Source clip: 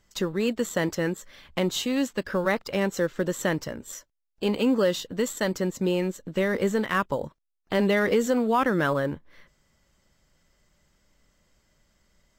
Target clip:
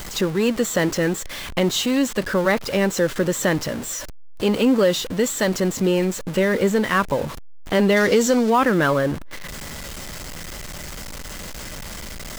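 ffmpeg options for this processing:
-filter_complex "[0:a]aeval=exprs='val(0)+0.5*0.0251*sgn(val(0))':c=same,asettb=1/sr,asplit=3[a][b][c];[a]atrim=end=7.964[d];[b]atrim=start=7.96:end=8.5,asetpts=PTS-STARTPTS,afade=t=in:d=0.004:c=qsin,afade=t=out:st=0.536:d=0.004:c=qsin,equalizer=f=5.4k:t=o:w=1.2:g=7.5[e];[c]atrim=start=8.496[f];[d][e]acrossfade=d=0.004:c1=hsin:c2=qsin[g];[g][f]acrossfade=d=0.004:c1=qsin:c2=hsin,volume=4.5dB"

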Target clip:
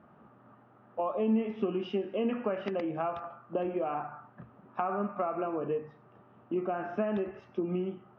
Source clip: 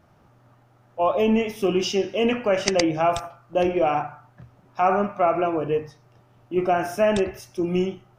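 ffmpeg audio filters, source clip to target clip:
-af "acompressor=threshold=-30dB:ratio=6,highpass=110,equalizer=f=110:t=q:w=4:g=-9,equalizer=f=220:t=q:w=4:g=8,equalizer=f=420:t=q:w=4:g=3,equalizer=f=1.2k:t=q:w=4:g=5,equalizer=f=2.2k:t=q:w=4:g=-6,lowpass=f=2.6k:w=0.5412,lowpass=f=2.6k:w=1.3066,volume=-1dB"

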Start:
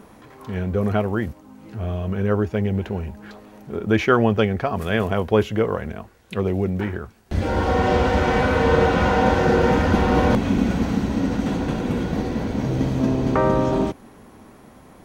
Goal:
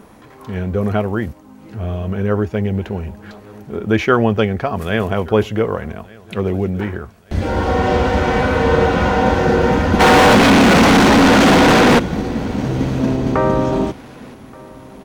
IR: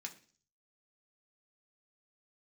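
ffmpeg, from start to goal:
-filter_complex "[0:a]asplit=3[a][b][c];[a]afade=t=out:st=9.99:d=0.02[d];[b]asplit=2[e][f];[f]highpass=f=720:p=1,volume=40dB,asoftclip=type=tanh:threshold=-6dB[g];[e][g]amix=inputs=2:normalize=0,lowpass=f=3.3k:p=1,volume=-6dB,afade=t=in:st=9.99:d=0.02,afade=t=out:st=11.98:d=0.02[h];[c]afade=t=in:st=11.98:d=0.02[i];[d][h][i]amix=inputs=3:normalize=0,aecho=1:1:1177|2354|3531:0.0668|0.0281|0.0118,volume=3dB"

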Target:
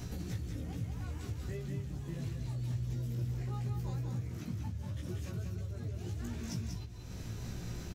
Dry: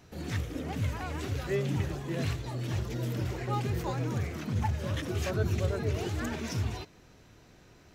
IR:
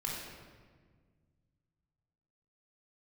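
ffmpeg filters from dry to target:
-filter_complex "[0:a]bass=f=250:g=13,treble=f=4k:g=8,acompressor=threshold=-44dB:ratio=16,asplit=2[a][b];[b]adelay=17,volume=-3.5dB[c];[a][c]amix=inputs=2:normalize=0,aecho=1:1:189:0.562,volume=5.5dB"

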